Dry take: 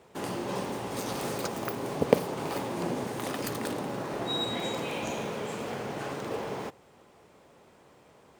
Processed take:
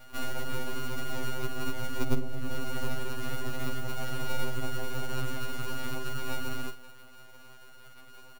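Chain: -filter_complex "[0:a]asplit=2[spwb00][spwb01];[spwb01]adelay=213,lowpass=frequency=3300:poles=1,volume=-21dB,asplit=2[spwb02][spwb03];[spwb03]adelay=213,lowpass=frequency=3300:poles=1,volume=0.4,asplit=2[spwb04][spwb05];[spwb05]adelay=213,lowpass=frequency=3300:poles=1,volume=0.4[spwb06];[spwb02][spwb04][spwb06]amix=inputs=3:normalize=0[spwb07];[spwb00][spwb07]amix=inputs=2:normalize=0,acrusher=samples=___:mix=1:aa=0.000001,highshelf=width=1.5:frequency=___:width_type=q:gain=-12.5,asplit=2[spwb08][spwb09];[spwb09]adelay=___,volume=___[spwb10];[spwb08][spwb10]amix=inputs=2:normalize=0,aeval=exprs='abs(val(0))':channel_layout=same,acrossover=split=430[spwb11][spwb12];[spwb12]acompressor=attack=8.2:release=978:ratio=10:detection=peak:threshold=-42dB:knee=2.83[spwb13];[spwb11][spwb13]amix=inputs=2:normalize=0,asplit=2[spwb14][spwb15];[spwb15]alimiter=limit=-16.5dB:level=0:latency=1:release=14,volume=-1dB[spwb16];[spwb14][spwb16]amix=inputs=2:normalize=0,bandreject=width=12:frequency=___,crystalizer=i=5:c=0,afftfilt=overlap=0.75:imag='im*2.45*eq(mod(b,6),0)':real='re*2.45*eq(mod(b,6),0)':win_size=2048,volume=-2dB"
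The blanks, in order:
31, 1700, 45, -9.5dB, 7900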